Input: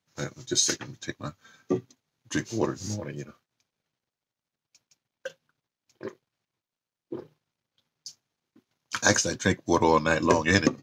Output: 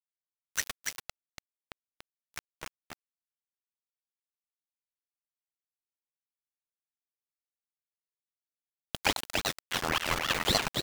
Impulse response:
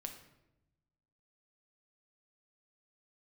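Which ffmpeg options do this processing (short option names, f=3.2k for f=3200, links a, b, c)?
-filter_complex "[0:a]highpass=f=350:w=0.5412,highpass=f=350:w=1.3066,equalizer=f=440:t=q:w=4:g=-8,equalizer=f=2k:t=q:w=4:g=10,equalizer=f=3.6k:t=q:w=4:g=6,lowpass=f=5.2k:w=0.5412,lowpass=f=5.2k:w=1.3066,aeval=exprs='val(0)*gte(abs(val(0)),0.1)':c=same,asplit=2[a][b];[b]aecho=0:1:287:0.631[c];[a][c]amix=inputs=2:normalize=0,aeval=exprs='val(0)*sin(2*PI*1400*n/s+1400*0.75/3.6*sin(2*PI*3.6*n/s))':c=same,volume=-3dB"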